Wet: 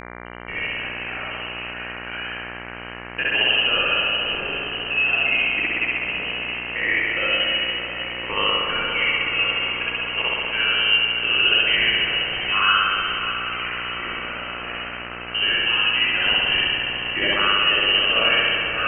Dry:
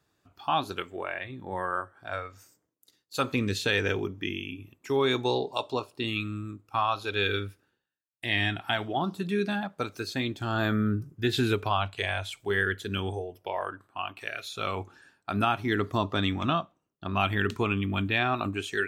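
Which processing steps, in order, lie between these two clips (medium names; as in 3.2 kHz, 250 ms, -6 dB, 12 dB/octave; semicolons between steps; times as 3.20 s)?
coarse spectral quantiser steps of 15 dB; bass shelf 60 Hz +9.5 dB; level held to a coarse grid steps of 14 dB; rotary cabinet horn 0.85 Hz; frequency inversion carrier 3 kHz; on a send: echo that smears into a reverb 630 ms, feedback 68%, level -9.5 dB; on the sum: spring tank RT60 2.1 s, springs 58 ms, chirp 25 ms, DRR -7 dB; mains buzz 60 Hz, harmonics 39, -42 dBFS -1 dB/octave; trim +5 dB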